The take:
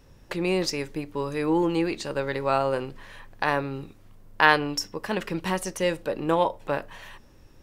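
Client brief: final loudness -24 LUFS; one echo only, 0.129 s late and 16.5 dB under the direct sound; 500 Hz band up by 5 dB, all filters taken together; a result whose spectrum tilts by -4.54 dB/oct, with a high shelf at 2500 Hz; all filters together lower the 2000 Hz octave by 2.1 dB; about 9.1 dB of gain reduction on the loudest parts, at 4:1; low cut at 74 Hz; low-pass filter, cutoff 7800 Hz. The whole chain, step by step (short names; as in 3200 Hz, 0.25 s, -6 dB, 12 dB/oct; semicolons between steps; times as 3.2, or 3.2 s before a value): HPF 74 Hz; LPF 7800 Hz; bell 500 Hz +6 dB; bell 2000 Hz -5.5 dB; high shelf 2500 Hz +5.5 dB; compressor 4:1, threshold -24 dBFS; echo 0.129 s -16.5 dB; gain +5 dB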